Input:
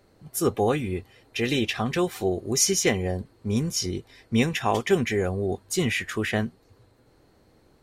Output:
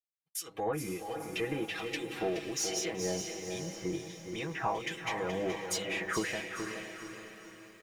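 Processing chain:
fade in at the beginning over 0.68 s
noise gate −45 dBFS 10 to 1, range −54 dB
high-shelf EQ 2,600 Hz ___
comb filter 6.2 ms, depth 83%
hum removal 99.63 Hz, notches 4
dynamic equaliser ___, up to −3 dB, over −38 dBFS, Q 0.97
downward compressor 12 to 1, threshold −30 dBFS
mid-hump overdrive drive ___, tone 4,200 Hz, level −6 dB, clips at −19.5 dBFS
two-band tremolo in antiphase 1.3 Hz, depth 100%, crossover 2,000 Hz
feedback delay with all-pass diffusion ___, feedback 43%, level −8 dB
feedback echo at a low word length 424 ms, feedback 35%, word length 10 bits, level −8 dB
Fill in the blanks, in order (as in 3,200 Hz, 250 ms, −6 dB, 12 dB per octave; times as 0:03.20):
−2.5 dB, 9,100 Hz, 13 dB, 515 ms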